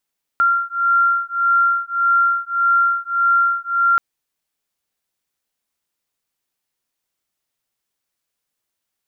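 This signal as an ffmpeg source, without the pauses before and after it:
ffmpeg -f lavfi -i "aevalsrc='0.141*(sin(2*PI*1380*t)+sin(2*PI*1381.7*t))':duration=3.58:sample_rate=44100" out.wav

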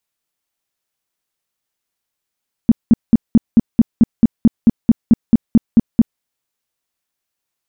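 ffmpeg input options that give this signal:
ffmpeg -f lavfi -i "aevalsrc='0.668*sin(2*PI*229*mod(t,0.22))*lt(mod(t,0.22),6/229)':duration=3.52:sample_rate=44100" out.wav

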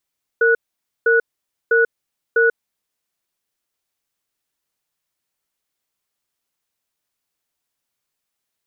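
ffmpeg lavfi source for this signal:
ffmpeg -f lavfi -i "aevalsrc='0.2*(sin(2*PI*460*t)+sin(2*PI*1470*t))*clip(min(mod(t,0.65),0.14-mod(t,0.65))/0.005,0,1)':duration=2.41:sample_rate=44100" out.wav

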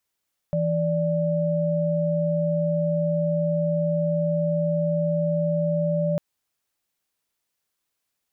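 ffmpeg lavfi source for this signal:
ffmpeg -f lavfi -i "aevalsrc='0.0708*(sin(2*PI*164.81*t)+sin(2*PI*587.33*t))':duration=5.65:sample_rate=44100" out.wav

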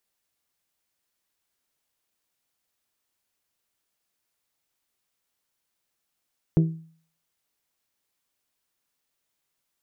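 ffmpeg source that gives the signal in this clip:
ffmpeg -f lavfi -i "aevalsrc='0.224*pow(10,-3*t/0.49)*sin(2*PI*162*t)+0.1*pow(10,-3*t/0.302)*sin(2*PI*324*t)+0.0447*pow(10,-3*t/0.265)*sin(2*PI*388.8*t)+0.02*pow(10,-3*t/0.227)*sin(2*PI*486*t)+0.00891*pow(10,-3*t/0.186)*sin(2*PI*648*t)':duration=0.89:sample_rate=44100" out.wav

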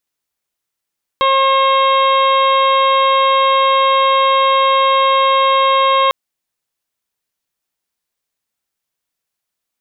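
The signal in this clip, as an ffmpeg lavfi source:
ffmpeg -f lavfi -i "aevalsrc='0.158*sin(2*PI*538*t)+0.282*sin(2*PI*1076*t)+0.0316*sin(2*PI*1614*t)+0.0631*sin(2*PI*2152*t)+0.0473*sin(2*PI*2690*t)+0.0708*sin(2*PI*3228*t)+0.0631*sin(2*PI*3766*t)':duration=4.9:sample_rate=44100" out.wav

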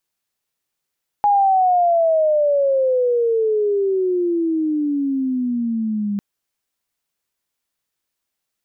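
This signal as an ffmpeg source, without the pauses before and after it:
ffmpeg -f lavfi -i "aevalsrc='pow(10,(-11.5-7.5*t/4.95)/20)*sin(2*PI*830*4.95/log(200/830)*(exp(log(200/830)*t/4.95)-1))':duration=4.95:sample_rate=44100" out.wav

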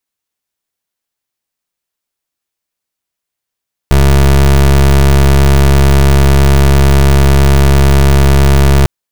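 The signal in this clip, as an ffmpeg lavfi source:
ffmpeg -f lavfi -i "aevalsrc='0.501*(2*lt(mod(69*t,1),0.26)-1)':duration=4.95:sample_rate=44100" out.wav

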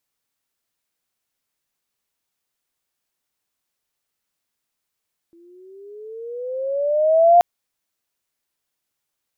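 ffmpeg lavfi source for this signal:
ffmpeg -f lavfi -i "aevalsrc='pow(10,(-7+40*(t/2.08-1))/20)*sin(2*PI*334*2.08/(13*log(2)/12)*(exp(13*log(2)/12*t/2.08)-1))':duration=2.08:sample_rate=44100" out.wav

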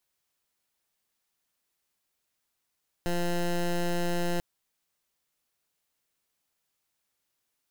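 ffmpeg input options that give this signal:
ffmpeg -f lavfi -i "aevalsrc='0.0422*(2*lt(mod(174*t,1),0.15)-1)':duration=1.34:sample_rate=44100" out.wav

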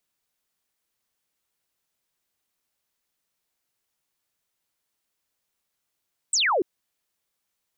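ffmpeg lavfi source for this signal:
ffmpeg -f lavfi -i "aevalsrc='0.112*clip(t/0.002,0,1)*clip((0.29-t)/0.002,0,1)*sin(2*PI*8600*0.29/log(320/8600)*(exp(log(320/8600)*t/0.29)-1))':duration=0.29:sample_rate=44100" out.wav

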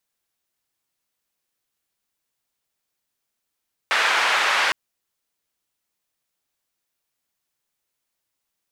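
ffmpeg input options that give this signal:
ffmpeg -f lavfi -i "anoisesrc=color=white:duration=0.81:sample_rate=44100:seed=1,highpass=frequency=970,lowpass=frequency=2000,volume=-2.5dB" out.wav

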